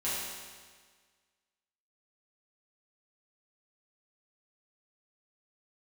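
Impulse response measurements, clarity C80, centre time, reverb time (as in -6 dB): 0.5 dB, 0.108 s, 1.6 s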